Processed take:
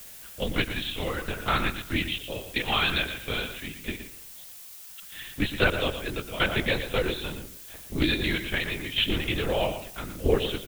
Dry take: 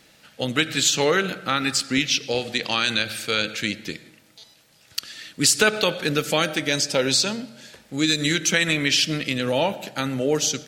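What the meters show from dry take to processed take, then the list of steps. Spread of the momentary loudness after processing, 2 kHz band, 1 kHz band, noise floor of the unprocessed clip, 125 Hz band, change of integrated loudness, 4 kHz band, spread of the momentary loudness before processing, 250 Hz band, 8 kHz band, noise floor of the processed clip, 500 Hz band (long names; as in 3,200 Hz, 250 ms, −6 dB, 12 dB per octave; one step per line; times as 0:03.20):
16 LU, −5.0 dB, −4.0 dB, −55 dBFS, −2.0 dB, −6.5 dB, −7.0 dB, 13 LU, −6.0 dB, −19.5 dB, −45 dBFS, −5.5 dB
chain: shaped tremolo saw down 0.78 Hz, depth 85%
linear-prediction vocoder at 8 kHz whisper
on a send: single-tap delay 117 ms −10.5 dB
on the sum: background noise blue −45 dBFS
highs frequency-modulated by the lows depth 0.12 ms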